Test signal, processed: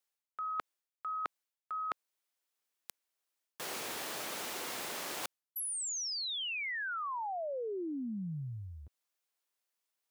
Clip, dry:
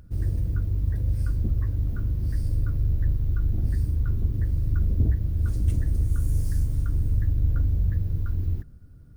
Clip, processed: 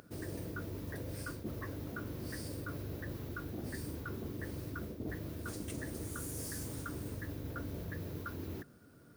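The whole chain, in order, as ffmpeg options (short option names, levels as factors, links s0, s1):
-af "highpass=360,areverse,acompressor=threshold=0.00631:ratio=10,areverse,volume=2.24"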